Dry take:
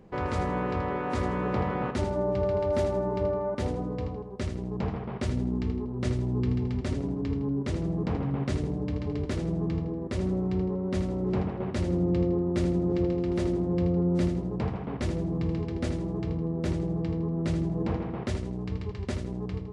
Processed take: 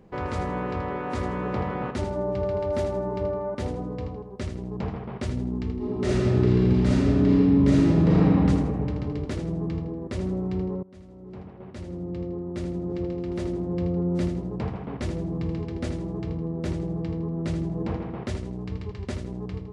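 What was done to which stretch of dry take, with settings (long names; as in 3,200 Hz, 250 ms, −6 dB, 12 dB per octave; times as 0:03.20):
0:05.76–0:08.34: thrown reverb, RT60 2.5 s, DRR −8.5 dB
0:10.83–0:14.14: fade in, from −22.5 dB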